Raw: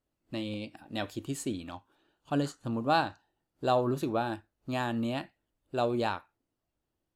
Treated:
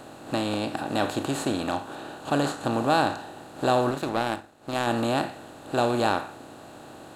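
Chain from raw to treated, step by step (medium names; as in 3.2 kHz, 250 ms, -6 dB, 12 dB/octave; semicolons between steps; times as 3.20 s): spectral levelling over time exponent 0.4; 3.90–4.87 s: power-law waveshaper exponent 1.4; trim +1 dB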